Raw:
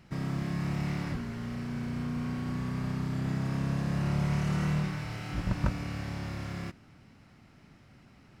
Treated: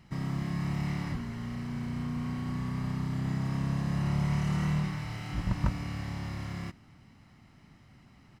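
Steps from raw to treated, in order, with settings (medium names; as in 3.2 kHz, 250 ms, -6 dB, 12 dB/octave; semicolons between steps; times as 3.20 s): comb 1 ms, depth 33%; trim -1.5 dB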